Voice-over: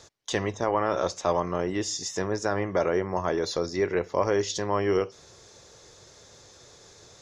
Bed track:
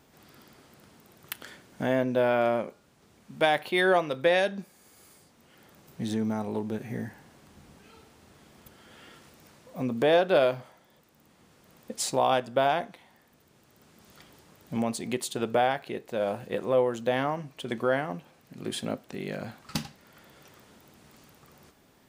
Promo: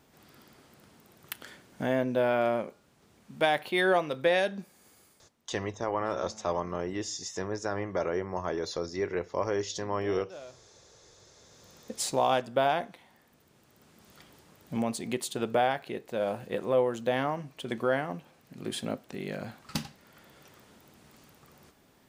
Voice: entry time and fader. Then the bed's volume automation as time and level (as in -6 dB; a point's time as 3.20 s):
5.20 s, -5.5 dB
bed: 4.90 s -2 dB
5.79 s -23 dB
11.07 s -23 dB
11.63 s -1.5 dB